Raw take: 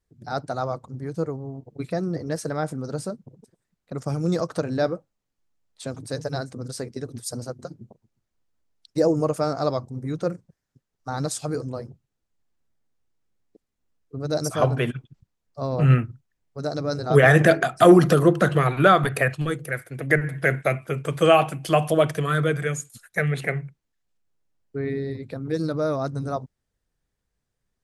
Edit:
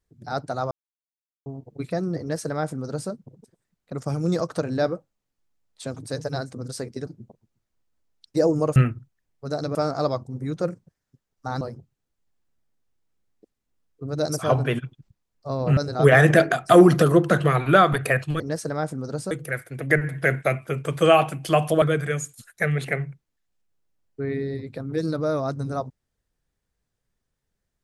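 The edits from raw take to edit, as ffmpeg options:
-filter_complex "[0:a]asplit=11[a][b][c][d][e][f][g][h][i][j][k];[a]atrim=end=0.71,asetpts=PTS-STARTPTS,afade=t=out:st=0.706:d=0.004:c=hsin[l];[b]atrim=start=0.71:end=1.46,asetpts=PTS-STARTPTS,volume=0[m];[c]atrim=start=1.46:end=7.072,asetpts=PTS-STARTPTS,afade=t=in:d=0.004:c=hsin[n];[d]atrim=start=7.678:end=9.372[o];[e]atrim=start=15.888:end=16.882[p];[f]atrim=start=9.368:end=11.232[q];[g]atrim=start=11.728:end=15.892[r];[h]atrim=start=16.878:end=19.512[s];[i]atrim=start=2.198:end=3.112[t];[j]atrim=start=19.508:end=22.022[u];[k]atrim=start=22.378[v];[l][m][n]concat=n=3:v=0:a=1[w];[w][o]acrossfade=d=0.004:c1=hsin:c2=hsin[x];[x][p]acrossfade=d=0.004:c1=hsin:c2=hsin[y];[y][q]acrossfade=d=0.004:c1=hsin:c2=hsin[z];[z][r]acrossfade=d=0.004:c1=hsin:c2=hsin[aa];[aa][s]acrossfade=d=0.004:c1=hsin:c2=hsin[ab];[ab][t]acrossfade=d=0.004:c1=hsin:c2=hsin[ac];[ac][u]acrossfade=d=0.004:c1=hsin:c2=hsin[ad];[ad][v]acrossfade=d=0.004:c1=hsin:c2=hsin"

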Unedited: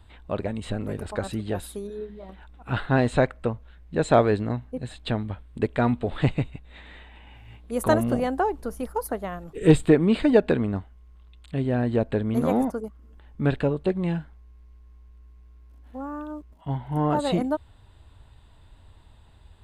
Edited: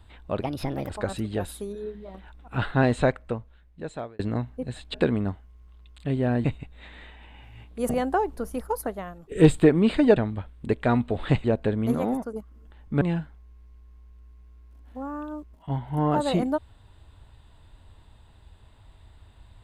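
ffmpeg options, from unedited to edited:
-filter_complex "[0:a]asplit=13[a][b][c][d][e][f][g][h][i][j][k][l][m];[a]atrim=end=0.424[n];[b]atrim=start=0.42:end=1.04,asetpts=PTS-STARTPTS,asetrate=57771,aresample=44100[o];[c]atrim=start=1.036:end=4.34,asetpts=PTS-STARTPTS,afade=t=out:st=2.004:d=1.3[p];[d]atrim=start=4.34:end=5.092,asetpts=PTS-STARTPTS,afade=t=in:d=0.004:c=hsin[q];[e]atrim=start=10.418:end=11.922[r];[f]atrim=start=6.368:end=7.822[s];[g]atrim=start=8.148:end=9.57,asetpts=PTS-STARTPTS,afade=t=out:st=0.872:d=0.55:silence=0.354813[t];[h]atrim=start=9.57:end=10.422,asetpts=PTS-STARTPTS,afade=t=in:d=0.004:c=hsin:silence=0.354813[u];[i]atrim=start=5.088:end=6.372[v];[j]atrim=start=11.918:end=12.432[w];[k]atrim=start=12.428:end=12.812,asetpts=PTS-STARTPTS,volume=-4dB[x];[l]atrim=start=12.808:end=13.492[y];[m]atrim=start=13.998[z];[n][o]acrossfade=d=0.004:c1=hsin:c2=hsin[aa];[p][q]concat=n=2:v=0:a=1[ab];[aa][ab]acrossfade=d=0.004:c1=hsin:c2=hsin[ac];[ac][r]acrossfade=d=0.004:c1=hsin:c2=hsin[ad];[ad][s]acrossfade=d=0.004:c1=hsin:c2=hsin[ae];[t][u]concat=n=2:v=0:a=1[af];[ae][af]acrossfade=d=0.004:c1=hsin:c2=hsin[ag];[ag][v]acrossfade=d=0.004:c1=hsin:c2=hsin[ah];[ah][w]acrossfade=d=0.004:c1=hsin:c2=hsin[ai];[ai][x]acrossfade=d=0.004:c1=hsin:c2=hsin[aj];[aj][y]acrossfade=d=0.004:c1=hsin:c2=hsin[ak];[ak][z]acrossfade=d=0.004:c1=hsin:c2=hsin"

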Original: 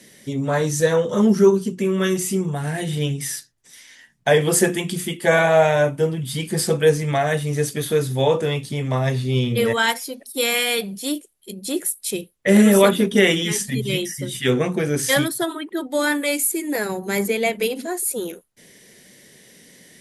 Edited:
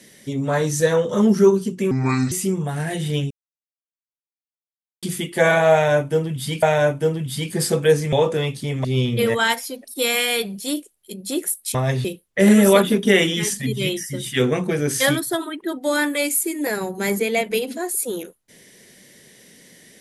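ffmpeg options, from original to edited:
-filter_complex "[0:a]asplit=10[a][b][c][d][e][f][g][h][i][j];[a]atrim=end=1.914[k];[b]atrim=start=1.91:end=2.19,asetpts=PTS-STARTPTS,asetrate=30429,aresample=44100[l];[c]atrim=start=2.186:end=3.18,asetpts=PTS-STARTPTS,afade=t=out:st=0.99:d=0.004:c=hsin[m];[d]atrim=start=3.18:end=4.9,asetpts=PTS-STARTPTS,volume=0[n];[e]atrim=start=4.9:end=6.502,asetpts=PTS-STARTPTS,afade=t=in:d=0.004:c=hsin[o];[f]atrim=start=5.598:end=7.102[p];[g]atrim=start=8.208:end=8.932[q];[h]atrim=start=9.228:end=12.132[r];[i]atrim=start=8.928:end=9.232[s];[j]atrim=start=12.128[t];[k][l]acrossfade=d=0.004:c1=hsin:c2=hsin[u];[m][n][o]concat=n=3:v=0:a=1[v];[u][v]acrossfade=d=0.004:c1=hsin:c2=hsin[w];[w][p]acrossfade=d=0.004:c1=hsin:c2=hsin[x];[x][q]acrossfade=d=0.004:c1=hsin:c2=hsin[y];[y][r]acrossfade=d=0.004:c1=hsin:c2=hsin[z];[z][s]acrossfade=d=0.004:c1=hsin:c2=hsin[aa];[aa][t]acrossfade=d=0.004:c1=hsin:c2=hsin"

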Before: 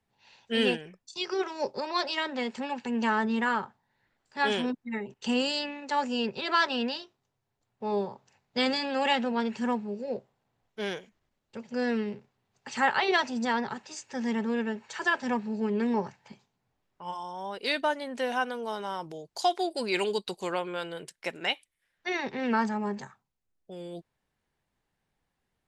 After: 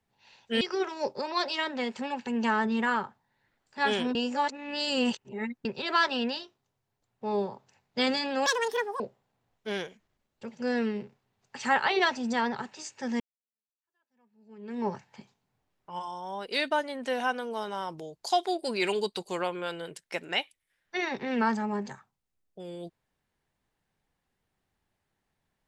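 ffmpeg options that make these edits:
-filter_complex "[0:a]asplit=7[a][b][c][d][e][f][g];[a]atrim=end=0.612[h];[b]atrim=start=1.198:end=4.742[i];[c]atrim=start=4.738:end=6.242,asetpts=PTS-STARTPTS,areverse[j];[d]atrim=start=6.238:end=9.054[k];[e]atrim=start=9.05:end=10.12,asetpts=PTS-STARTPTS,asetrate=87318,aresample=44100[l];[f]atrim=start=10.116:end=14.32,asetpts=PTS-STARTPTS,afade=t=out:st=4.2:d=0.004:c=hsin[m];[g]atrim=start=14.32,asetpts=PTS-STARTPTS,afade=t=in:d=1.69:c=exp[n];[h][i]acrossfade=d=0.004:c1=hsin:c2=hsin[o];[o][j]acrossfade=d=0.004:c1=hsin:c2=hsin[p];[p][k]acrossfade=d=0.004:c1=hsin:c2=hsin[q];[q][l]acrossfade=d=0.004:c1=hsin:c2=hsin[r];[m][n]concat=n=2:v=0:a=1[s];[r][s]acrossfade=d=0.004:c1=hsin:c2=hsin"

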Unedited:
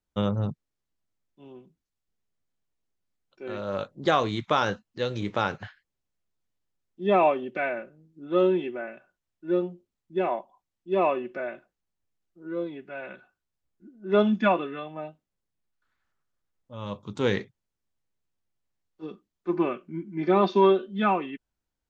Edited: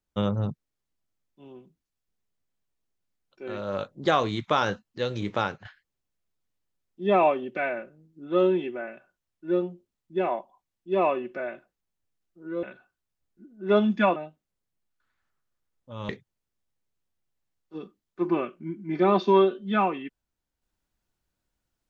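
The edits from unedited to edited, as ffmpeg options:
-filter_complex "[0:a]asplit=5[a][b][c][d][e];[a]atrim=end=5.65,asetpts=PTS-STARTPTS,afade=t=out:st=5.4:d=0.25:silence=0.266073[f];[b]atrim=start=5.65:end=12.632,asetpts=PTS-STARTPTS,afade=t=in:d=0.004:c=hsin:silence=0.266073[g];[c]atrim=start=13.058:end=14.592[h];[d]atrim=start=14.978:end=16.912[i];[e]atrim=start=17.368[j];[f][g]concat=n=2:v=0:a=1[k];[k][h]acrossfade=d=0.004:c1=hsin:c2=hsin[l];[l][i]acrossfade=d=0.004:c1=hsin:c2=hsin[m];[m][j]acrossfade=d=0.004:c1=hsin:c2=hsin"

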